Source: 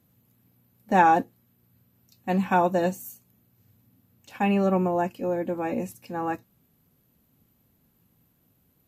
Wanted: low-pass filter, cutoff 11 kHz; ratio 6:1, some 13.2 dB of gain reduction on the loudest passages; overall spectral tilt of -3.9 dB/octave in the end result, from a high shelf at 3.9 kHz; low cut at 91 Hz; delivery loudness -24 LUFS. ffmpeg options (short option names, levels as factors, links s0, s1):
-af "highpass=91,lowpass=11000,highshelf=f=3900:g=-7.5,acompressor=threshold=0.0355:ratio=6,volume=3.16"